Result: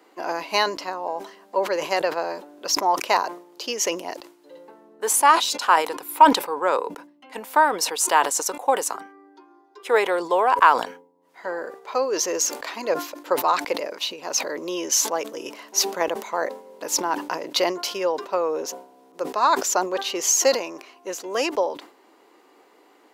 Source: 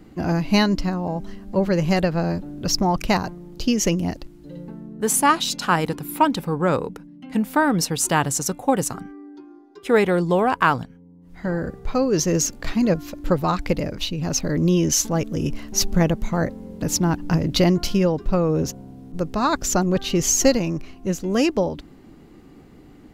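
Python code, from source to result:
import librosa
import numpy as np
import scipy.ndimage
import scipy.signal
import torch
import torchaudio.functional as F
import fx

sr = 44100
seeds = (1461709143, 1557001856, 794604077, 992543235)

y = scipy.signal.sosfilt(scipy.signal.butter(4, 430.0, 'highpass', fs=sr, output='sos'), x)
y = fx.peak_eq(y, sr, hz=980.0, db=8.0, octaves=0.25)
y = fx.sustainer(y, sr, db_per_s=120.0)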